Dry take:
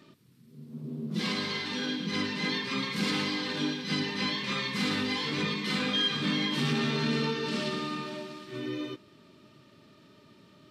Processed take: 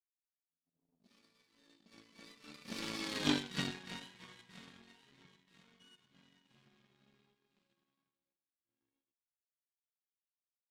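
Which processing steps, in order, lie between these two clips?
Doppler pass-by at 3.29 s, 35 m/s, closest 9.5 m; power-law waveshaper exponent 2; trim +5.5 dB

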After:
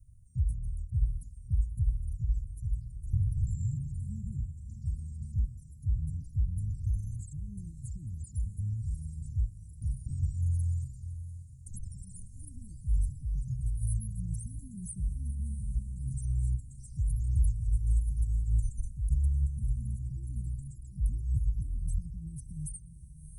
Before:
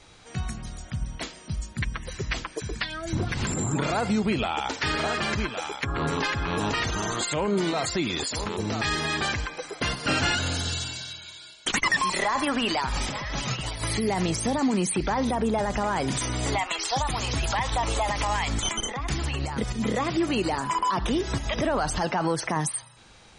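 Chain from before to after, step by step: inverse Chebyshev band-stop 550–3300 Hz, stop band 80 dB; echo that smears into a reverb 672 ms, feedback 45%, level -13 dB; trim +4 dB

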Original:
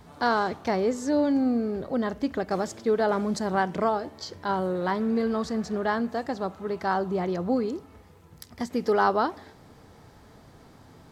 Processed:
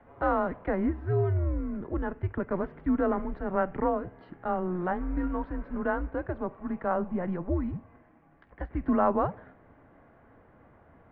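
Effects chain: mistuned SSB -180 Hz 240–2400 Hz; trim -2 dB

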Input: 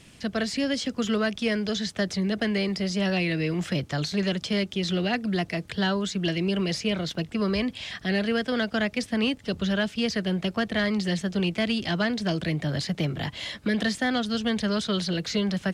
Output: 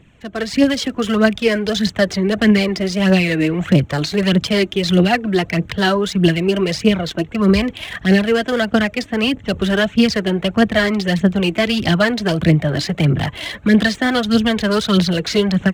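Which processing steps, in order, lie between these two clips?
local Wiener filter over 9 samples; phaser 1.6 Hz, delay 3.3 ms, feedback 51%; level rider gain up to 12 dB

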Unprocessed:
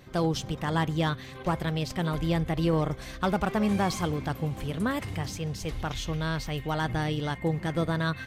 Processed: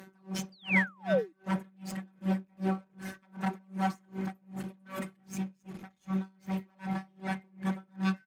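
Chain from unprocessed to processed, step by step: rattle on loud lows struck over -35 dBFS, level -34 dBFS; high-order bell 3.5 kHz -8.5 dB; de-hum 71.5 Hz, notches 11; in parallel at +2 dB: peak limiter -22.5 dBFS, peak gain reduction 7.5 dB; on the sum: feedback comb 370 Hz, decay 0.83 s, mix 50%; robot voice 191 Hz; one-sided clip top -35.5 dBFS; speakerphone echo 200 ms, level -17 dB; reverberation RT60 0.70 s, pre-delay 3 ms, DRR 11 dB; painted sound fall, 0.52–1.33 s, 300–4900 Hz -32 dBFS; logarithmic tremolo 2.6 Hz, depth 37 dB; trim +7.5 dB

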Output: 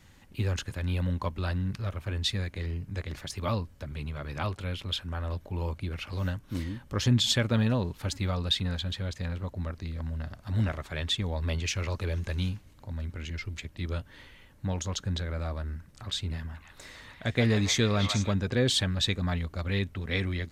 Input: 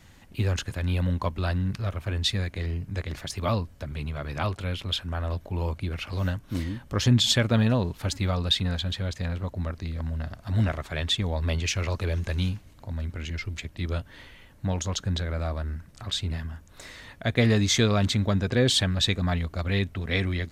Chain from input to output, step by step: band-stop 680 Hz, Q 12; 16.24–18.34 s: repeats whose band climbs or falls 153 ms, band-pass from 1 kHz, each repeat 1.4 oct, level -1.5 dB; trim -3.5 dB

